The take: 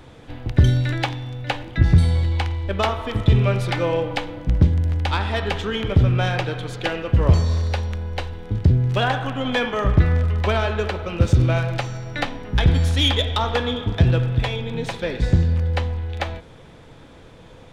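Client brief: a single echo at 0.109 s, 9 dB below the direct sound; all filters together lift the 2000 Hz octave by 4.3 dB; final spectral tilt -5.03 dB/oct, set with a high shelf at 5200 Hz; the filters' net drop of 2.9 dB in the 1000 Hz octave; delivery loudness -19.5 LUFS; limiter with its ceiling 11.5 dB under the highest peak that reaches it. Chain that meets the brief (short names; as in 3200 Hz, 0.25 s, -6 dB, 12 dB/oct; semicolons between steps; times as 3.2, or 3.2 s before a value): bell 1000 Hz -6 dB; bell 2000 Hz +8.5 dB; high shelf 5200 Hz -8 dB; limiter -14.5 dBFS; echo 0.109 s -9 dB; gain +4 dB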